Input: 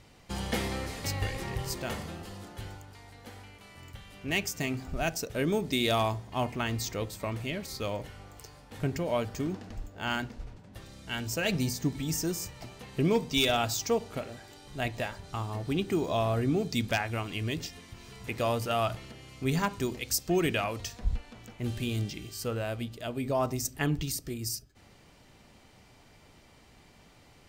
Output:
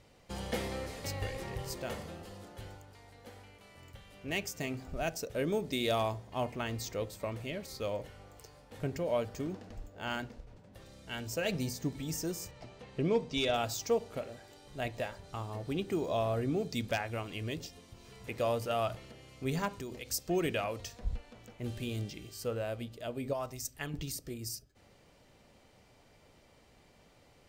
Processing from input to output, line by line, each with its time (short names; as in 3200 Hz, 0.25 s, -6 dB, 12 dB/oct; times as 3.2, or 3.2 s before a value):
10.4–10.97 compressor, threshold -41 dBFS
12.51–13.54 air absorption 67 m
17.58–18.05 bell 1900 Hz -6.5 dB 0.91 oct
19.68–20.1 compressor, threshold -32 dBFS
23.33–23.94 bell 300 Hz -10 dB 2.9 oct
whole clip: bell 530 Hz +6.5 dB 0.63 oct; gain -6 dB